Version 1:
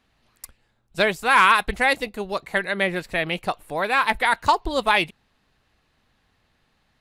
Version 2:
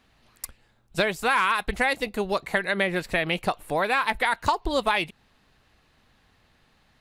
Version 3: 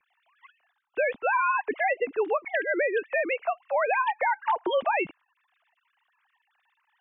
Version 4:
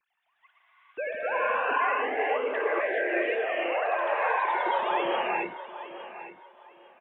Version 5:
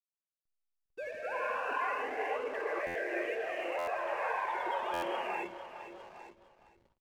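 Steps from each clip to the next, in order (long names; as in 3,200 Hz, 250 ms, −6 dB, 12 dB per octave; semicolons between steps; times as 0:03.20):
downward compressor 4 to 1, threshold −25 dBFS, peak gain reduction 11.5 dB; level +4 dB
three sine waves on the formant tracks; low-shelf EQ 330 Hz +9 dB; brickwall limiter −17 dBFS, peak gain reduction 8.5 dB
repeating echo 858 ms, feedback 24%, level −13.5 dB; reverb whose tail is shaped and stops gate 480 ms rising, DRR −5 dB; delay with pitch and tempo change per echo 145 ms, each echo +1 semitone, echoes 3, each echo −6 dB; level −8 dB
slack as between gear wheels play −42 dBFS; single-tap delay 463 ms −13 dB; buffer that repeats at 0:02.86/0:03.78/0:04.93, samples 512, times 7; level −8 dB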